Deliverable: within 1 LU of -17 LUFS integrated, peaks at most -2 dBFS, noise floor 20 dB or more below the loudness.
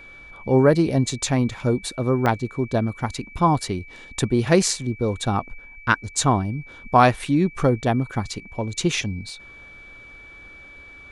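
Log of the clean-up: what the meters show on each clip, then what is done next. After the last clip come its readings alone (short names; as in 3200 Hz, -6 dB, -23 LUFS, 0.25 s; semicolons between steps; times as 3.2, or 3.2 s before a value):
dropouts 3; longest dropout 2.1 ms; steady tone 2300 Hz; tone level -42 dBFS; loudness -22.0 LUFS; peak -2.0 dBFS; loudness target -17.0 LUFS
-> interpolate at 2.26/8.33/9.29, 2.1 ms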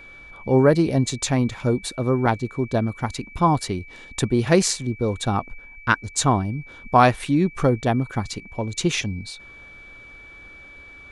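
dropouts 0; steady tone 2300 Hz; tone level -42 dBFS
-> notch 2300 Hz, Q 30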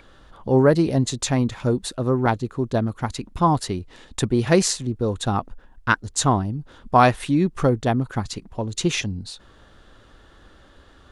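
steady tone none; loudness -22.0 LUFS; peak -2.5 dBFS; loudness target -17.0 LUFS
-> gain +5 dB; limiter -2 dBFS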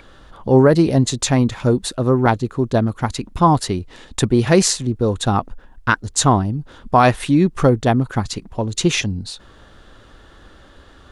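loudness -17.5 LUFS; peak -2.0 dBFS; noise floor -47 dBFS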